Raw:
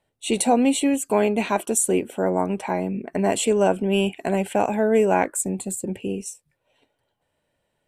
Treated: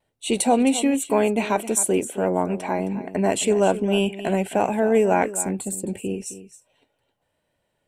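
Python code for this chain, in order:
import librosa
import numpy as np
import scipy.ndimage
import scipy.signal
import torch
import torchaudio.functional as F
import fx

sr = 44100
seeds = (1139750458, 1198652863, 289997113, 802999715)

y = fx.vibrato(x, sr, rate_hz=1.1, depth_cents=28.0)
y = y + 10.0 ** (-14.0 / 20.0) * np.pad(y, (int(265 * sr / 1000.0), 0))[:len(y)]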